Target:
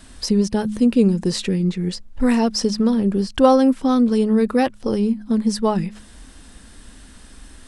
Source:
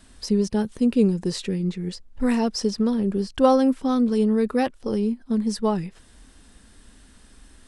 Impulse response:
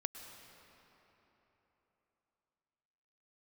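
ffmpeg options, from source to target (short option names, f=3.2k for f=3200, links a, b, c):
-filter_complex "[0:a]equalizer=f=410:w=6.6:g=-3,bandreject=f=105.5:t=h:w=4,bandreject=f=211:t=h:w=4,asplit=2[a][b];[b]acompressor=threshold=-28dB:ratio=6,volume=-2dB[c];[a][c]amix=inputs=2:normalize=0,volume=2.5dB"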